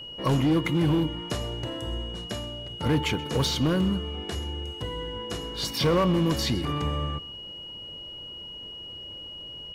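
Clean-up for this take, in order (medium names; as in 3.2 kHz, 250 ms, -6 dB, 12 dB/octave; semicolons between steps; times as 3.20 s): clip repair -18 dBFS; band-stop 2.9 kHz, Q 30; inverse comb 129 ms -21 dB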